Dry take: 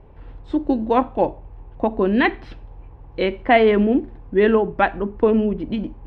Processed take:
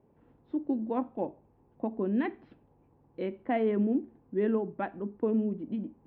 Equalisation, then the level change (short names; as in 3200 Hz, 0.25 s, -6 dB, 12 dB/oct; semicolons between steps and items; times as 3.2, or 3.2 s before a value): band-pass 210 Hz, Q 1.5; air absorption 160 m; tilt +4 dB/oct; 0.0 dB